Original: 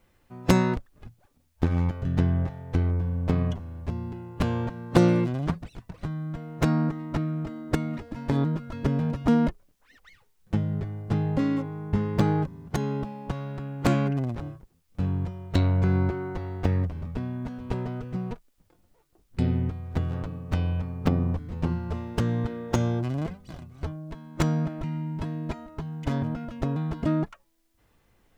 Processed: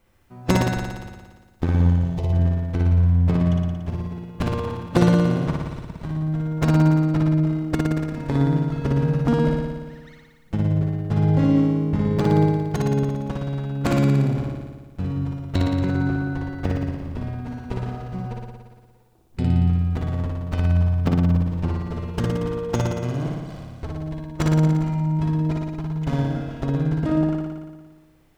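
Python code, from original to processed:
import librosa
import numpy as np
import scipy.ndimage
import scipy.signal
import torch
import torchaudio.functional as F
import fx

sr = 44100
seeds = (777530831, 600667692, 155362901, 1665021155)

y = fx.fixed_phaser(x, sr, hz=630.0, stages=4, at=(1.9, 2.33))
y = fx.room_flutter(y, sr, wall_m=9.9, rt60_s=1.4)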